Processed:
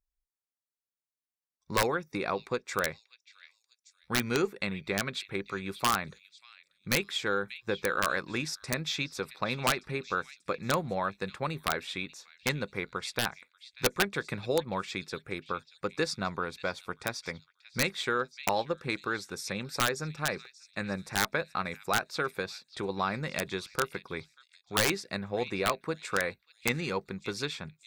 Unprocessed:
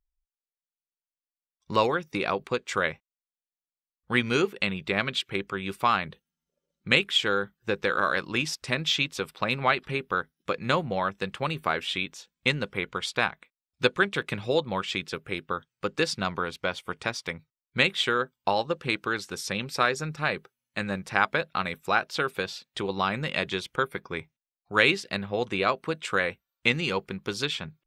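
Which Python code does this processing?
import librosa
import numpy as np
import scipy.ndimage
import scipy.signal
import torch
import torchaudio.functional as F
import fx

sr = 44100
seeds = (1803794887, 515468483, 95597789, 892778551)

p1 = fx.peak_eq(x, sr, hz=3000.0, db=-14.0, octaves=0.27)
p2 = p1 + fx.echo_stepped(p1, sr, ms=587, hz=3400.0, octaves=0.7, feedback_pct=70, wet_db=-12.0, dry=0)
p3 = fx.cheby_harmonics(p2, sr, harmonics=(4,), levels_db=(-35,), full_scale_db=-6.0)
p4 = (np.mod(10.0 ** (12.5 / 20.0) * p3 + 1.0, 2.0) - 1.0) / 10.0 ** (12.5 / 20.0)
y = F.gain(torch.from_numpy(p4), -3.5).numpy()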